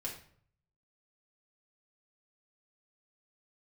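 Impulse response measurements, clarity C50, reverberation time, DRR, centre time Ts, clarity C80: 7.0 dB, 0.55 s, -3.0 dB, 24 ms, 11.0 dB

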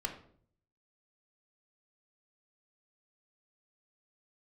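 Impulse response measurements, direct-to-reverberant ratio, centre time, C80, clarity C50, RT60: 4.0 dB, 16 ms, 13.0 dB, 9.5 dB, 0.55 s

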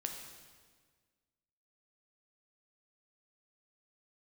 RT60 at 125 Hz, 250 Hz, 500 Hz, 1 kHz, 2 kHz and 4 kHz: 1.8, 1.8, 1.7, 1.5, 1.5, 1.4 s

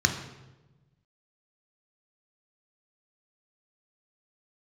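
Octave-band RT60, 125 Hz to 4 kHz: 1.7, 1.4, 1.2, 0.95, 0.85, 0.80 s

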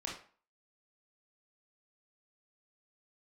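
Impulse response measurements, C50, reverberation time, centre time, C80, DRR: 4.5 dB, 0.45 s, 34 ms, 10.5 dB, -3.0 dB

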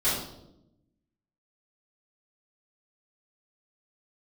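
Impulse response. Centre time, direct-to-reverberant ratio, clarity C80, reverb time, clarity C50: 55 ms, -13.5 dB, 5.5 dB, 0.85 s, 2.0 dB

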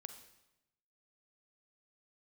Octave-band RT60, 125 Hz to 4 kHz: 1.2, 1.1, 0.90, 0.90, 0.85, 0.80 s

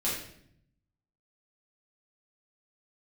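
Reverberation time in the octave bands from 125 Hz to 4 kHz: 1.2, 1.0, 0.75, 0.60, 0.60, 0.55 s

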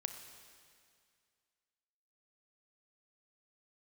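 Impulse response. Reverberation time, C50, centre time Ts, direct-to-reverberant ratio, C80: 2.2 s, 7.5 dB, 32 ms, 6.5 dB, 8.5 dB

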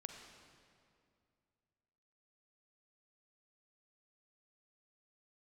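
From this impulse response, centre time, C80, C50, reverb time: 57 ms, 5.0 dB, 4.0 dB, 2.4 s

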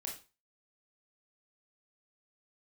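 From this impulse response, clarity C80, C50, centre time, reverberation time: 13.0 dB, 6.5 dB, 27 ms, 0.30 s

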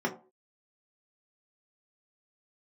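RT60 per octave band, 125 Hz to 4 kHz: 0.30, 0.40, 0.45, 0.35, 0.20, 0.15 s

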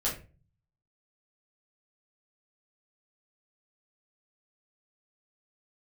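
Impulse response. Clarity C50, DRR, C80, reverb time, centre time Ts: 7.5 dB, -7.0 dB, 13.5 dB, 0.35 s, 27 ms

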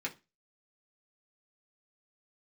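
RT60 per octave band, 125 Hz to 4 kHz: 0.30, 0.30, 0.25, 0.25, 0.25, 0.25 s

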